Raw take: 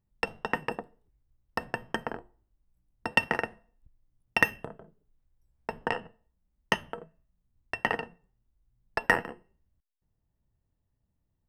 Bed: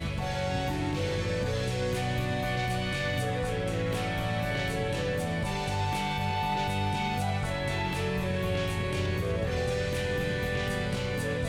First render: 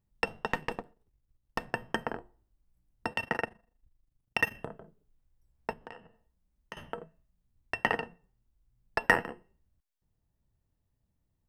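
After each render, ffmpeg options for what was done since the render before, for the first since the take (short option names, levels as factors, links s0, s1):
-filter_complex "[0:a]asettb=1/sr,asplit=3[s0][s1][s2];[s0]atrim=end=0.474[s3];[s1]atrim=start=0.47:end=1.73,asetpts=PTS-STARTPTS,afade=t=in:d=0.004:c=qsin,afade=t=out:st=1.256:d=0.004:c=qsin,aeval=exprs='if(lt(val(0),0),0.447*val(0),val(0))':c=same[s4];[s2]atrim=start=1.726[s5];[s3][s4]acrossfade=d=0.004:c1=hsin:c2=qsin[s6];[s6][s5]acrossfade=d=0.004:c1=qsin:c2=hsin,asplit=3[s7][s8][s9];[s7]afade=t=out:st=3.13:d=0.02[s10];[s8]tremolo=f=25:d=0.824,afade=t=in:st=3.13:d=0.02,afade=t=out:st=4.53:d=0.02[s11];[s9]afade=t=in:st=4.53:d=0.02[s12];[s10][s11][s12]amix=inputs=3:normalize=0,asettb=1/sr,asplit=3[s13][s14][s15];[s13]atrim=end=5.734[s16];[s14]atrim=start=5.73:end=6.77,asetpts=PTS-STARTPTS,afade=t=in:d=0.004:c=qsin,afade=t=out:st=1.036:d=0.004:c=qsin,acompressor=threshold=0.00158:ratio=2:attack=3.2:release=140:knee=1:detection=peak[s17];[s15]atrim=start=6.766[s18];[s16][s17]acrossfade=d=0.004:c1=hsin:c2=qsin[s19];[s19][s18]acrossfade=d=0.004:c1=qsin:c2=hsin"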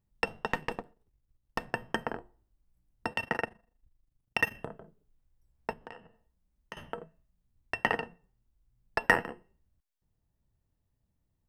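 -af anull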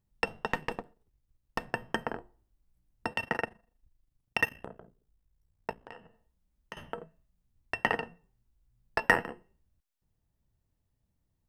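-filter_complex "[0:a]asettb=1/sr,asplit=3[s0][s1][s2];[s0]atrim=end=4.464[s3];[s1]atrim=start=4.46:end=5.89,asetpts=PTS-STARTPTS,afade=t=in:d=0.004:c=qsin,afade=t=out:st=1.426:d=0.004:c=qsin,aeval=exprs='val(0)*sin(2*PI*29*n/s)':c=same[s4];[s2]atrim=start=5.886[s5];[s3][s4]acrossfade=d=0.004:c1=hsin:c2=qsin[s6];[s6][s5]acrossfade=d=0.004:c1=qsin:c2=hsin,asettb=1/sr,asplit=3[s7][s8][s9];[s7]atrim=end=8.054[s10];[s8]atrim=start=8.05:end=9.09,asetpts=PTS-STARTPTS,afade=t=in:d=0.004:c=qsin,afade=t=out:st=1.036:d=0.004:c=qsin,asplit=2[s11][s12];[s12]adelay=18,volume=0.335[s13];[s11][s13]amix=inputs=2:normalize=0,atrim=end_sample=45864[s14];[s9]atrim=start=9.086[s15];[s10][s14]acrossfade=d=0.004:c1=hsin:c2=qsin[s16];[s16][s15]acrossfade=d=0.004:c1=qsin:c2=hsin"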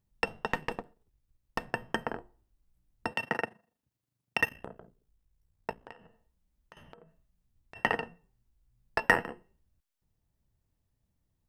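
-filter_complex "[0:a]asettb=1/sr,asplit=3[s0][s1][s2];[s0]atrim=end=3.134[s3];[s1]atrim=start=3.13:end=4.4,asetpts=PTS-STARTPTS,afade=t=in:d=0.004:c=qsin,afade=t=out:st=1.266:d=0.004:c=qsin,highpass=f=110:w=0.5412,highpass=f=110:w=1.3066[s4];[s2]atrim=start=4.396[s5];[s3][s4]acrossfade=d=0.004:c1=hsin:c2=qsin[s6];[s6][s5]acrossfade=d=0.004:c1=qsin:c2=hsin,asplit=3[s7][s8][s9];[s7]afade=t=out:st=5.91:d=0.02[s10];[s8]acompressor=threshold=0.00316:ratio=6:attack=3.2:release=140:knee=1:detection=peak,afade=t=in:st=5.91:d=0.02,afade=t=out:st=7.75:d=0.02[s11];[s9]afade=t=in:st=7.75:d=0.02[s12];[s10][s11][s12]amix=inputs=3:normalize=0"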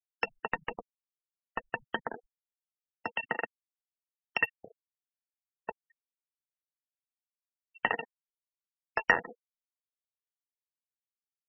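-af "afftfilt=real='re*gte(hypot(re,im),0.0316)':imag='im*gte(hypot(re,im),0.0316)':win_size=1024:overlap=0.75,lowshelf=f=360:g=-8.5"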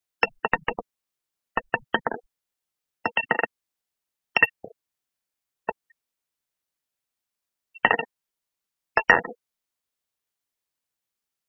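-af "volume=3.16,alimiter=limit=0.891:level=0:latency=1"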